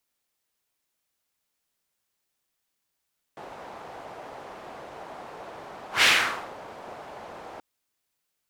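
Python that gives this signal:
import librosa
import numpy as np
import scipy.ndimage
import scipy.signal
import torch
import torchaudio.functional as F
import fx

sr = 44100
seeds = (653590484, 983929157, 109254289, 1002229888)

y = fx.whoosh(sr, seeds[0], length_s=4.23, peak_s=2.66, rise_s=0.13, fall_s=0.53, ends_hz=740.0, peak_hz=2600.0, q=1.6, swell_db=24)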